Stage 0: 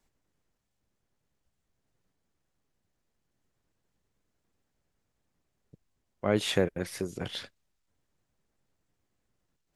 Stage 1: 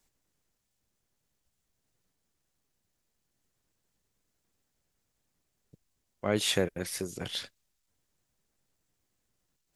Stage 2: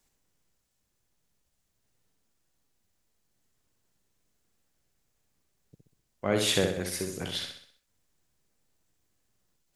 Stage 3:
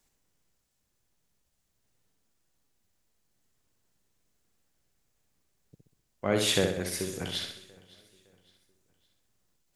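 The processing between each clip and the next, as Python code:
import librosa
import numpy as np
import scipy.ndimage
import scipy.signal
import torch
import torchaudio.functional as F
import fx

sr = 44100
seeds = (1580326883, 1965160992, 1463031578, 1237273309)

y1 = fx.high_shelf(x, sr, hz=3400.0, db=10.0)
y1 = y1 * librosa.db_to_amplitude(-2.5)
y2 = fx.echo_feedback(y1, sr, ms=64, feedback_pct=46, wet_db=-5.0)
y2 = y2 * librosa.db_to_amplitude(1.0)
y3 = fx.echo_feedback(y2, sr, ms=561, feedback_pct=40, wet_db=-23.5)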